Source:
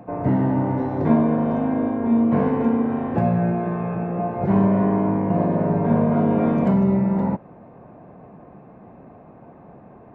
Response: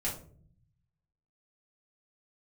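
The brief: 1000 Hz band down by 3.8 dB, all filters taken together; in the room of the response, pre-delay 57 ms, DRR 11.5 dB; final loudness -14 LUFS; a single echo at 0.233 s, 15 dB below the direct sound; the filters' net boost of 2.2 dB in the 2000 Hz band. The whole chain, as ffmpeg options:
-filter_complex "[0:a]equalizer=f=1k:t=o:g=-6.5,equalizer=f=2k:t=o:g=5.5,aecho=1:1:233:0.178,asplit=2[a][b];[1:a]atrim=start_sample=2205,adelay=57[c];[b][c]afir=irnorm=-1:irlink=0,volume=-15.5dB[d];[a][d]amix=inputs=2:normalize=0,volume=5.5dB"

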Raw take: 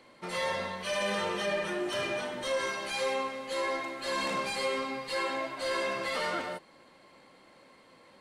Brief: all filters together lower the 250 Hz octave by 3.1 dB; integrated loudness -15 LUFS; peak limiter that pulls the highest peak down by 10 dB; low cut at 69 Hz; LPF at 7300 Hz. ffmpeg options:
-af "highpass=69,lowpass=7.3k,equalizer=f=250:t=o:g=-4.5,volume=24dB,alimiter=limit=-7.5dB:level=0:latency=1"

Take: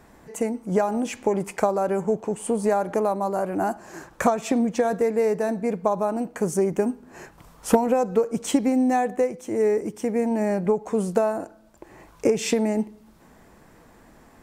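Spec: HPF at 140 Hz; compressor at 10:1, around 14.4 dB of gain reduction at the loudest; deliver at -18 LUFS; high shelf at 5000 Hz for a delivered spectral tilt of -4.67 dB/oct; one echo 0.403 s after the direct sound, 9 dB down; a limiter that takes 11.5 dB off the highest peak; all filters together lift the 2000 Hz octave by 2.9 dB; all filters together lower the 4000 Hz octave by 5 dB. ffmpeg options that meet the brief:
-af "highpass=140,equalizer=f=2k:t=o:g=6,equalizer=f=4k:t=o:g=-5.5,highshelf=f=5k:g=-8,acompressor=threshold=-29dB:ratio=10,alimiter=level_in=2.5dB:limit=-24dB:level=0:latency=1,volume=-2.5dB,aecho=1:1:403:0.355,volume=18.5dB"

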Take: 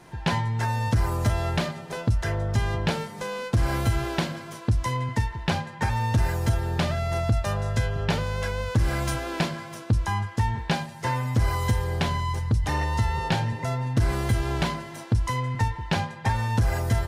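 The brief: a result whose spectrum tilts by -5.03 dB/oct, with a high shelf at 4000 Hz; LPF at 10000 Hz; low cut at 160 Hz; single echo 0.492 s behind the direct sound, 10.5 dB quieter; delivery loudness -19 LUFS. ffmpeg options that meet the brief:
-af "highpass=160,lowpass=10k,highshelf=f=4k:g=-9,aecho=1:1:492:0.299,volume=11.5dB"

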